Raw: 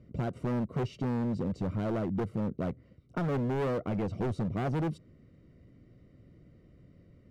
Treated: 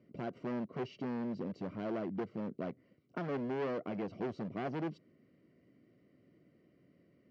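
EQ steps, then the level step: distance through air 55 m; cabinet simulation 260–5600 Hz, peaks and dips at 500 Hz -4 dB, 860 Hz -4 dB, 1.3 kHz -4 dB; band-stop 3.7 kHz, Q 9.7; -2.0 dB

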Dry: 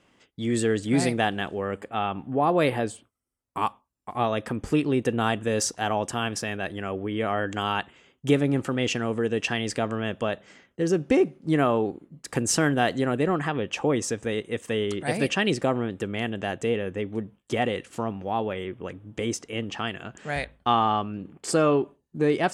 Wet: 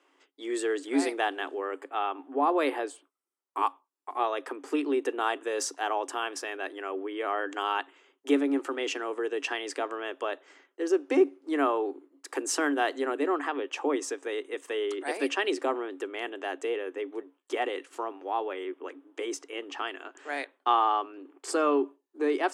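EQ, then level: rippled Chebyshev high-pass 270 Hz, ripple 6 dB; 0.0 dB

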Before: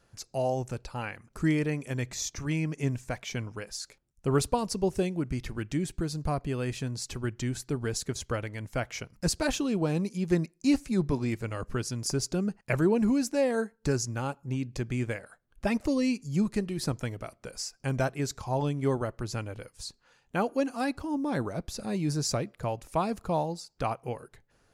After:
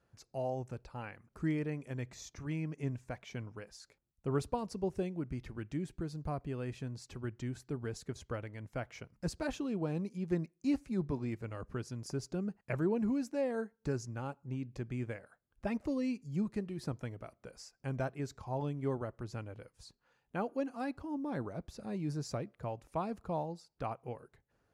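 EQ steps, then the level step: high-pass 40 Hz; treble shelf 3.1 kHz -11 dB; -7.5 dB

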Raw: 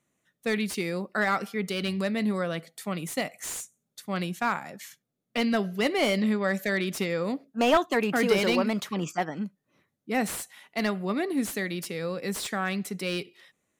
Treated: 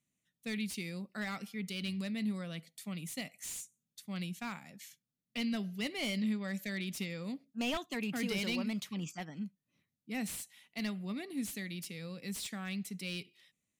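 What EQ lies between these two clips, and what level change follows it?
high-order bell 750 Hz -10.5 dB 2.7 oct; -7.0 dB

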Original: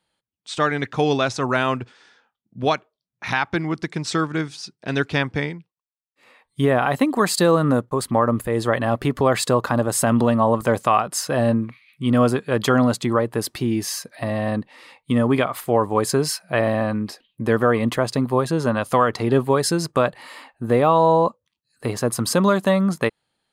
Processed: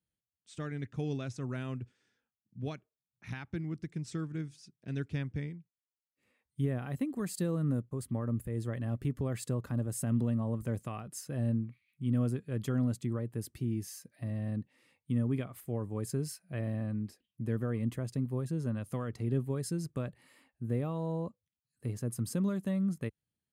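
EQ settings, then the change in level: high-pass 63 Hz; amplifier tone stack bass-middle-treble 10-0-1; peaking EQ 4.1 kHz -8.5 dB 1 oct; +5.0 dB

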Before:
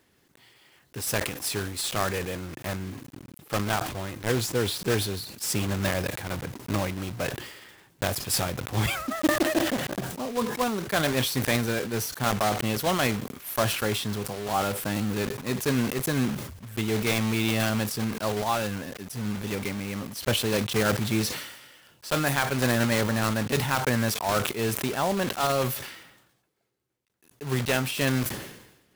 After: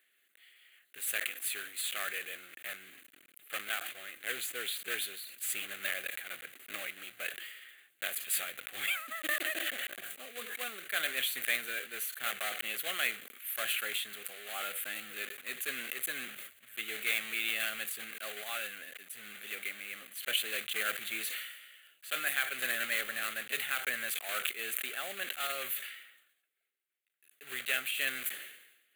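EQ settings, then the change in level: high-pass 1.1 kHz 12 dB/octave; static phaser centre 2.3 kHz, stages 4; -1.0 dB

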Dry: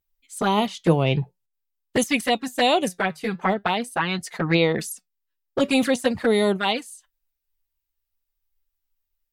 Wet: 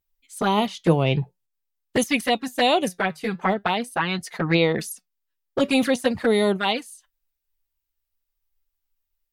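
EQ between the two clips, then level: dynamic bell 7.7 kHz, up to -6 dB, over -52 dBFS, Q 4.4; 0.0 dB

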